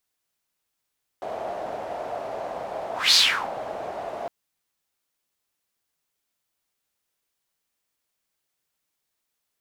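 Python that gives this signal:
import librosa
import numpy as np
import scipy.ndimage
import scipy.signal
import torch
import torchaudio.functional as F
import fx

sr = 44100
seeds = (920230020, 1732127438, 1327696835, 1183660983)

y = fx.whoosh(sr, seeds[0], length_s=3.06, peak_s=1.92, rise_s=0.21, fall_s=0.38, ends_hz=670.0, peak_hz=4500.0, q=5.0, swell_db=16.5)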